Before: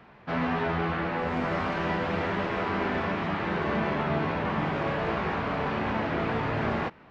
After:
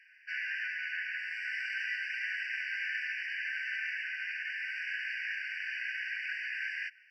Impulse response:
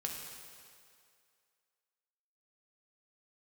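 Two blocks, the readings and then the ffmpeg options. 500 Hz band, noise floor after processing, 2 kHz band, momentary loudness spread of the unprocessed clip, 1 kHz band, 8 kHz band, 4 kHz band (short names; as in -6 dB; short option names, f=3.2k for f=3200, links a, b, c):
under -40 dB, -60 dBFS, +1.0 dB, 2 LU, under -35 dB, n/a, -2.5 dB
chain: -af "afftfilt=real='re*eq(mod(floor(b*sr/1024/1500),2),1)':imag='im*eq(mod(floor(b*sr/1024/1500),2),1)':win_size=1024:overlap=0.75,volume=1.5dB"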